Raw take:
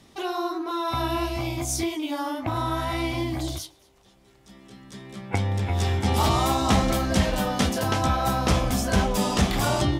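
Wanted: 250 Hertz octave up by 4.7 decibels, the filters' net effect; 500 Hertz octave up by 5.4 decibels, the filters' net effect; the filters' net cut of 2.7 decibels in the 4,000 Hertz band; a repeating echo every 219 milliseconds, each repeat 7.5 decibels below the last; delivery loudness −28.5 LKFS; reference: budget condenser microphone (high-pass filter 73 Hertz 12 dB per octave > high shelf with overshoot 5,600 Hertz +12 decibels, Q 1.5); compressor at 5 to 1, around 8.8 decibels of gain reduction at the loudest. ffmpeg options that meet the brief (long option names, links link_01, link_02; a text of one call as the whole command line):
ffmpeg -i in.wav -af "equalizer=frequency=250:width_type=o:gain=4.5,equalizer=frequency=500:width_type=o:gain=6,equalizer=frequency=4000:width_type=o:gain=-3.5,acompressor=threshold=-23dB:ratio=5,highpass=73,highshelf=frequency=5600:width_type=q:width=1.5:gain=12,aecho=1:1:219|438|657|876|1095:0.422|0.177|0.0744|0.0312|0.0131,volume=-3.5dB" out.wav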